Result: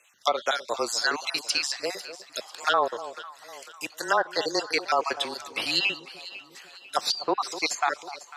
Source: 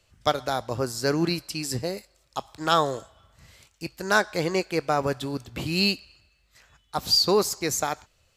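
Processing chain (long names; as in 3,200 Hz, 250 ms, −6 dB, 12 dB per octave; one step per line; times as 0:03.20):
time-frequency cells dropped at random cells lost 38%
frequency shifter −23 Hz
high-pass filter 490 Hz 12 dB per octave
tilt shelving filter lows −4.5 dB, about 1,100 Hz
treble cut that deepens with the level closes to 1,100 Hz, closed at −19.5 dBFS
in parallel at −1 dB: compressor whose output falls as the input rises −28 dBFS
on the sum: delay that swaps between a low-pass and a high-pass 249 ms, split 1,000 Hz, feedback 65%, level −12.5 dB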